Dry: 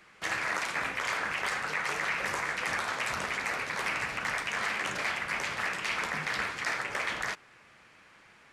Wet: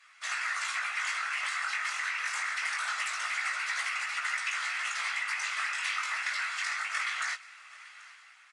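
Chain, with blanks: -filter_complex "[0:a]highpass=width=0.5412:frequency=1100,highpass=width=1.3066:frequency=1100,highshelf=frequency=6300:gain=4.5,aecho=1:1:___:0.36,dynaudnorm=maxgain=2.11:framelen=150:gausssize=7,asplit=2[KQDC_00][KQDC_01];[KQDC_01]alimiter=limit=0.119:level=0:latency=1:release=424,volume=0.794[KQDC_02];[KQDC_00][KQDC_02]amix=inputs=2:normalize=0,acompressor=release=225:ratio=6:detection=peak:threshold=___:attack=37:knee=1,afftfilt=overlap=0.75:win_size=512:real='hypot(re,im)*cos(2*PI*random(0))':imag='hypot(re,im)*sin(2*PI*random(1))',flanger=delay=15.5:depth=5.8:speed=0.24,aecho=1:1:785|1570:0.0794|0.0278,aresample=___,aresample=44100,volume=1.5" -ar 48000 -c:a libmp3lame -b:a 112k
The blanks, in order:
1.5, 0.0501, 22050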